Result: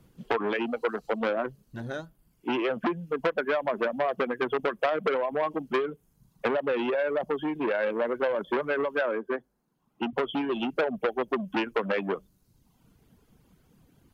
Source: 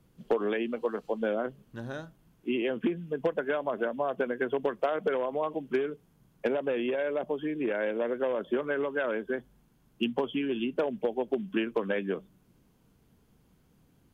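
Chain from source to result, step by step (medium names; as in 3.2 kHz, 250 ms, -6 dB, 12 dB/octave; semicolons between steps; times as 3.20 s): reverb removal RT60 0.9 s; 9.01–10.13 s: three-band isolator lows -20 dB, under 210 Hz, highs -13 dB, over 2 kHz; transformer saturation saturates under 1.3 kHz; trim +5.5 dB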